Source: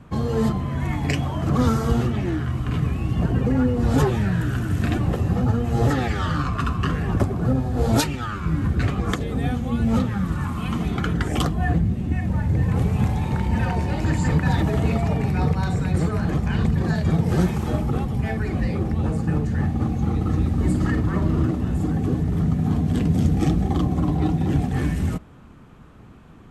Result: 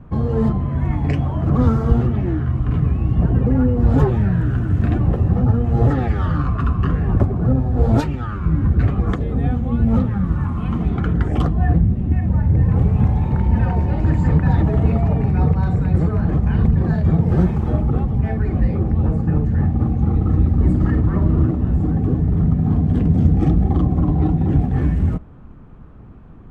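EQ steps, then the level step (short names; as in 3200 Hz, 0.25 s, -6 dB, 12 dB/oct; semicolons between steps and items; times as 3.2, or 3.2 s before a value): tilt -3.5 dB/oct; low shelf 450 Hz -9 dB; high shelf 2600 Hz -9.5 dB; +2.5 dB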